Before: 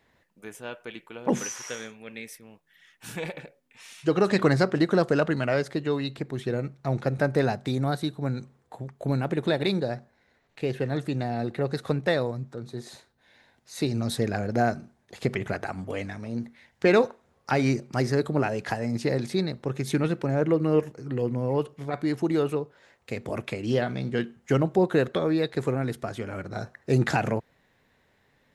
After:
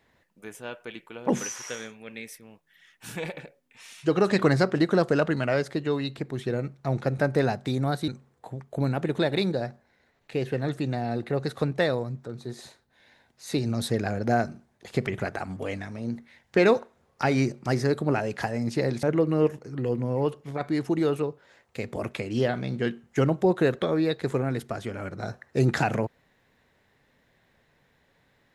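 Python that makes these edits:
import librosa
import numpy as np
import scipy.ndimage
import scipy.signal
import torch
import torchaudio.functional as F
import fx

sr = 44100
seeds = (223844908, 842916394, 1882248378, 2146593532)

y = fx.edit(x, sr, fx.cut(start_s=8.08, length_s=0.28),
    fx.cut(start_s=19.31, length_s=1.05), tone=tone)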